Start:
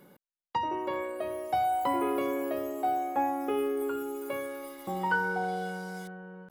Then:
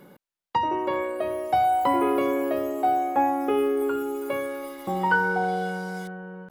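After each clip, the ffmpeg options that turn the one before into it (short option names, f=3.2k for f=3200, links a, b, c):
-af "highshelf=f=4.9k:g=-5,volume=6.5dB"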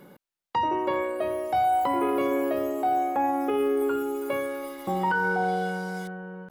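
-af "alimiter=limit=-17.5dB:level=0:latency=1:release=12"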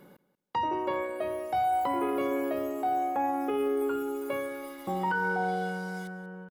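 -af "aecho=1:1:185|370:0.133|0.024,volume=-4dB"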